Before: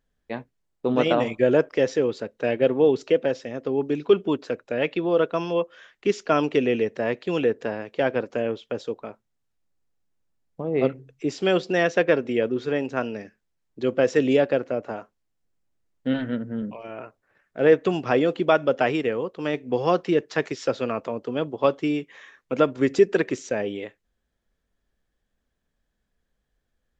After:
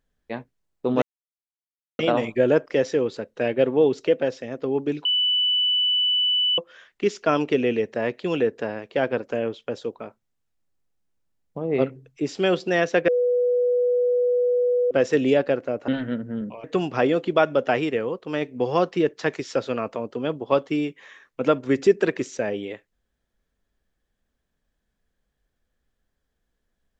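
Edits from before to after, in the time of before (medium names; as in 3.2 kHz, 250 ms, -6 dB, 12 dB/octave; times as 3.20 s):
1.02 s: insert silence 0.97 s
4.08–5.61 s: bleep 2.98 kHz -18 dBFS
12.11–13.94 s: bleep 491 Hz -17.5 dBFS
14.91–16.09 s: delete
16.85–17.76 s: delete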